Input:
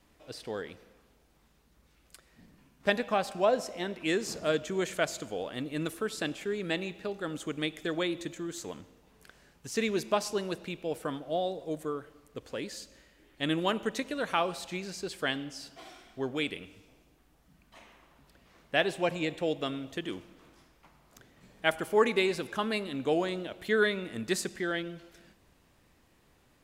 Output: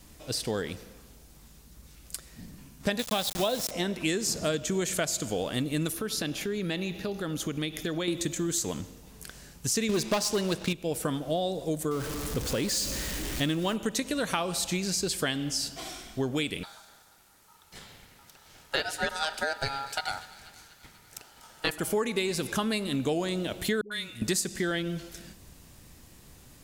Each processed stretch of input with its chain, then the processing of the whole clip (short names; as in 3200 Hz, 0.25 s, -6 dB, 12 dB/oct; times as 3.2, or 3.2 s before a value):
2.99–3.71 LPF 9800 Hz + bell 3600 Hz +15 dB 0.45 oct + sample gate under -36 dBFS
5.92–8.08 compressor 2:1, threshold -41 dBFS + bell 7900 Hz -14 dB 0.26 oct
9.89–10.73 LPF 1200 Hz 6 dB/oct + sample leveller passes 2 + EQ curve 290 Hz 0 dB, 2500 Hz +9 dB, 3800 Hz +12 dB
11.91–13.76 zero-crossing step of -39.5 dBFS + high shelf 5400 Hz -5.5 dB
16.63–21.78 HPF 120 Hz + ring modulator 1100 Hz + thin delay 0.243 s, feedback 62%, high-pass 1600 Hz, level -18.5 dB
23.81–24.22 passive tone stack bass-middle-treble 5-5-5 + dispersion highs, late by 0.103 s, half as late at 460 Hz
whole clip: tone controls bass +8 dB, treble +12 dB; compressor 6:1, threshold -32 dBFS; gain +6.5 dB